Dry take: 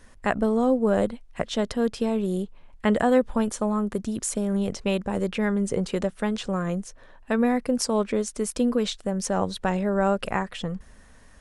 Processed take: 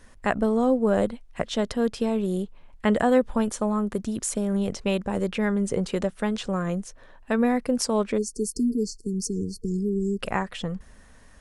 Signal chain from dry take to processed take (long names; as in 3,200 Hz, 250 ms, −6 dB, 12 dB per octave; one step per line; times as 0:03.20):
time-frequency box erased 0:08.18–0:10.20, 460–4,300 Hz